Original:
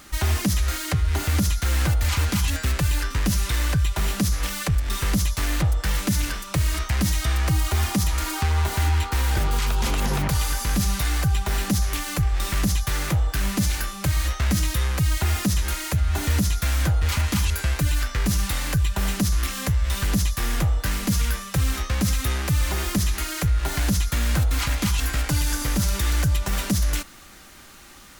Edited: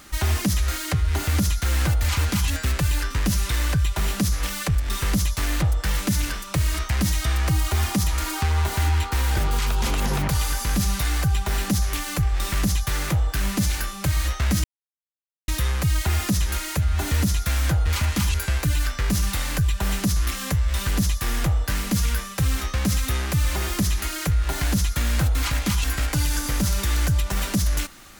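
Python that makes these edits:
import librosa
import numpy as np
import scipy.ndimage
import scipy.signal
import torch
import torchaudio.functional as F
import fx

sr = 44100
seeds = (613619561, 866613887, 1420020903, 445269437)

y = fx.edit(x, sr, fx.insert_silence(at_s=14.64, length_s=0.84), tone=tone)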